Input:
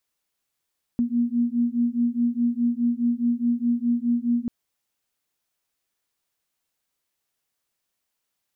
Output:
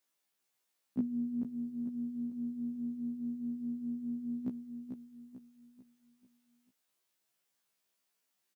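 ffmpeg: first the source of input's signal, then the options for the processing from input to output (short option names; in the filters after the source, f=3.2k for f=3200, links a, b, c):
-f lavfi -i "aevalsrc='0.0708*(sin(2*PI*236*t)+sin(2*PI*240.8*t))':d=3.49:s=44100"
-filter_complex "[0:a]highpass=140,asplit=2[a][b];[b]aecho=0:1:442|884|1326|1768|2210:0.447|0.183|0.0751|0.0308|0.0126[c];[a][c]amix=inputs=2:normalize=0,afftfilt=real='re*1.73*eq(mod(b,3),0)':imag='im*1.73*eq(mod(b,3),0)':win_size=2048:overlap=0.75"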